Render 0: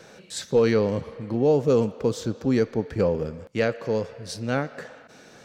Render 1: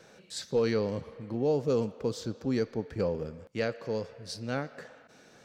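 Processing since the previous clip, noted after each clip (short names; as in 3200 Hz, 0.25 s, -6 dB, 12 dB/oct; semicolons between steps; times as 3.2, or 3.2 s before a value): dynamic EQ 4700 Hz, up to +6 dB, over -54 dBFS, Q 3.2; gain -7.5 dB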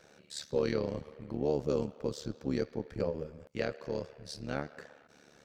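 AM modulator 73 Hz, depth 75%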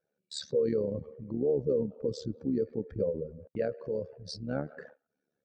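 spectral contrast raised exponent 1.9; gate -52 dBFS, range -27 dB; gain +3 dB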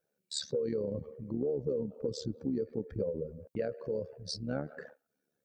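high shelf 6100 Hz +7.5 dB; compressor, threshold -29 dBFS, peak gain reduction 6.5 dB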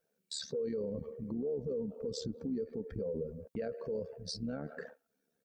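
comb 4.4 ms, depth 32%; limiter -30 dBFS, peak gain reduction 9.5 dB; gain +1 dB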